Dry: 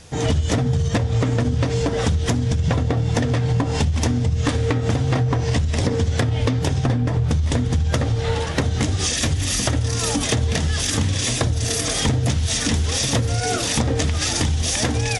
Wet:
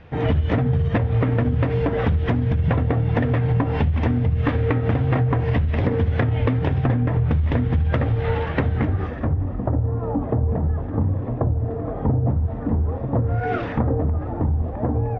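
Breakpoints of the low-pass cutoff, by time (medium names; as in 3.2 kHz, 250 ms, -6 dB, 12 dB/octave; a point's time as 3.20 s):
low-pass 24 dB/octave
8.61 s 2.5 kHz
9.47 s 1 kHz
13.14 s 1 kHz
13.58 s 2.3 kHz
13.98 s 1 kHz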